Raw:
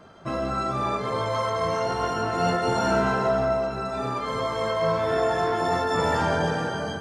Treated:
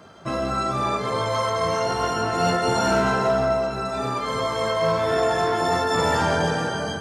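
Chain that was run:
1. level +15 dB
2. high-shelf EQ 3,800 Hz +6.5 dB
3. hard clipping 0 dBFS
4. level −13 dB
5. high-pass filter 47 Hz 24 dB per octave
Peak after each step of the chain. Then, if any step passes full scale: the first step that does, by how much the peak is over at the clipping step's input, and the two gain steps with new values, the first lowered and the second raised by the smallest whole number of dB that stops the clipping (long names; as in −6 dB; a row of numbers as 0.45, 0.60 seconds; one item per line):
+3.5, +4.0, 0.0, −13.0, −10.5 dBFS
step 1, 4.0 dB
step 1 +11 dB, step 4 −9 dB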